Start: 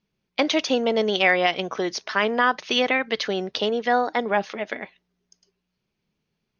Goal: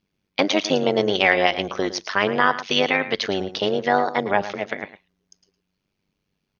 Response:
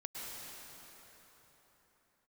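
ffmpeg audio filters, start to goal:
-af "tremolo=f=97:d=0.824,aecho=1:1:111:0.211,volume=5dB"

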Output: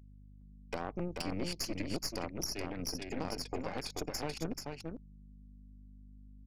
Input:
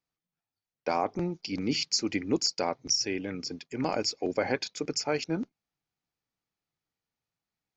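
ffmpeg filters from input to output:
ffmpeg -i in.wav -filter_complex "[0:a]afftdn=noise_reduction=16:noise_floor=-53,acrossover=split=110[link_01][link_02];[link_02]acompressor=threshold=-38dB:ratio=6[link_03];[link_01][link_03]amix=inputs=2:normalize=0,aeval=exprs='val(0)+0.002*(sin(2*PI*50*n/s)+sin(2*PI*2*50*n/s)/2+sin(2*PI*3*50*n/s)/3+sin(2*PI*4*50*n/s)/4+sin(2*PI*5*50*n/s)/5)':channel_layout=same,atempo=1.2,aeval=exprs='0.0473*(cos(1*acos(clip(val(0)/0.0473,-1,1)))-cos(1*PI/2))+0.00188*(cos(2*acos(clip(val(0)/0.0473,-1,1)))-cos(2*PI/2))+0.015*(cos(4*acos(clip(val(0)/0.0473,-1,1)))-cos(4*PI/2))+0.00133*(cos(6*acos(clip(val(0)/0.0473,-1,1)))-cos(6*PI/2))+0.000299*(cos(8*acos(clip(val(0)/0.0473,-1,1)))-cos(8*PI/2))':channel_layout=same,aecho=1:1:434:0.596" out.wav

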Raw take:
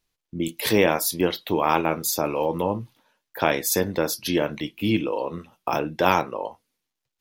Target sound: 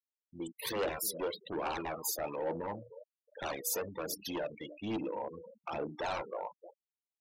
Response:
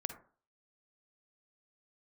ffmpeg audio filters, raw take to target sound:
-filter_complex "[0:a]asplit=2[link_01][link_02];[link_02]adelay=311,lowpass=frequency=1800:poles=1,volume=-17.5dB,asplit=2[link_03][link_04];[link_04]adelay=311,lowpass=frequency=1800:poles=1,volume=0.47,asplit=2[link_05][link_06];[link_06]adelay=311,lowpass=frequency=1800:poles=1,volume=0.47,asplit=2[link_07][link_08];[link_08]adelay=311,lowpass=frequency=1800:poles=1,volume=0.47[link_09];[link_03][link_05][link_07][link_09]amix=inputs=4:normalize=0[link_10];[link_01][link_10]amix=inputs=2:normalize=0,aeval=exprs='0.15*(abs(mod(val(0)/0.15+3,4)-2)-1)':channel_layout=same,bandreject=frequency=60:width_type=h:width=6,bandreject=frequency=120:width_type=h:width=6,bandreject=frequency=180:width_type=h:width=6,bandreject=frequency=240:width_type=h:width=6,bandreject=frequency=300:width_type=h:width=6,bandreject=frequency=360:width_type=h:width=6,bandreject=frequency=420:width_type=h:width=6,bandreject=frequency=480:width_type=h:width=6,aphaser=in_gain=1:out_gain=1:delay=2.2:decay=0.42:speed=1.2:type=triangular,afftfilt=real='re*gte(hypot(re,im),0.0501)':imag='im*gte(hypot(re,im),0.0501)':win_size=1024:overlap=0.75,highshelf=frequency=2200:gain=-11.5,asoftclip=type=tanh:threshold=-18.5dB,bass=frequency=250:gain=-9,treble=frequency=4000:gain=10,volume=-8dB"

